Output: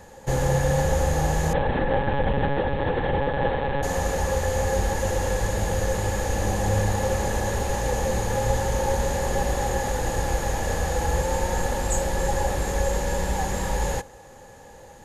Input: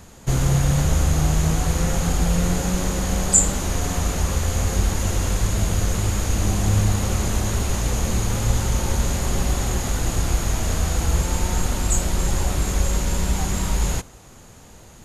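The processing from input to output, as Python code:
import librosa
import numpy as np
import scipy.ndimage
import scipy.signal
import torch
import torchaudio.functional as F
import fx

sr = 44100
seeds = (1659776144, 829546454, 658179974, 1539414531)

y = fx.lpc_monotone(x, sr, seeds[0], pitch_hz=140.0, order=10, at=(1.53, 3.83))
y = fx.small_body(y, sr, hz=(530.0, 820.0, 1700.0), ring_ms=40, db=17)
y = F.gain(torch.from_numpy(y), -5.5).numpy()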